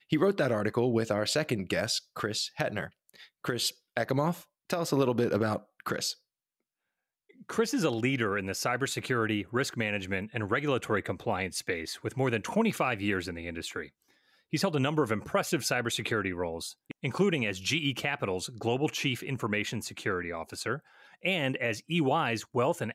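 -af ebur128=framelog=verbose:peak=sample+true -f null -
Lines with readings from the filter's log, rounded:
Integrated loudness:
  I:         -30.4 LUFS
  Threshold: -40.7 LUFS
Loudness range:
  LRA:         2.2 LU
  Threshold: -51.2 LUFS
  LRA low:   -32.3 LUFS
  LRA high:  -30.1 LUFS
Sample peak:
  Peak:      -14.6 dBFS
True peak:
  Peak:      -14.5 dBFS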